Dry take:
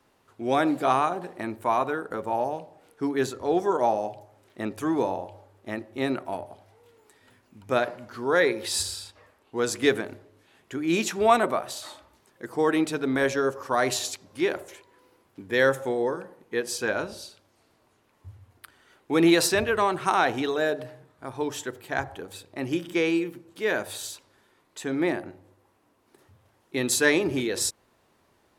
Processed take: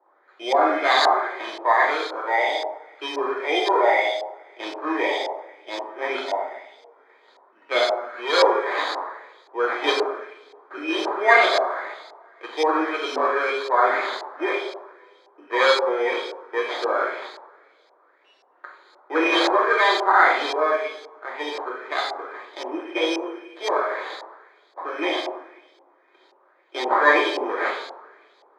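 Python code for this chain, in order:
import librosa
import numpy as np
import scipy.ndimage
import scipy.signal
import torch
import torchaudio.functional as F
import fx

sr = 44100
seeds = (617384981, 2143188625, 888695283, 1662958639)

y = fx.sample_hold(x, sr, seeds[0], rate_hz=2800.0, jitter_pct=0)
y = fx.rev_double_slope(y, sr, seeds[1], early_s=0.86, late_s=2.9, knee_db=-25, drr_db=-2.5)
y = fx.filter_lfo_lowpass(y, sr, shape='saw_up', hz=1.9, low_hz=790.0, high_hz=4600.0, q=2.5)
y = scipy.signal.sosfilt(scipy.signal.butter(6, 370.0, 'highpass', fs=sr, output='sos'), y)
y = F.gain(torch.from_numpy(y), -1.0).numpy()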